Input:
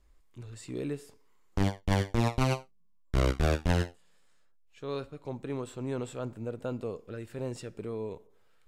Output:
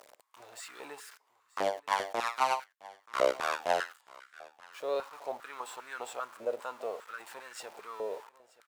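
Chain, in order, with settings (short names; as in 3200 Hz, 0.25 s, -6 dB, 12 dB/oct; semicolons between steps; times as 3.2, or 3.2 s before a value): zero-crossing step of -44.5 dBFS; echo 0.93 s -21 dB; stepped high-pass 5 Hz 590–1500 Hz; gain -1.5 dB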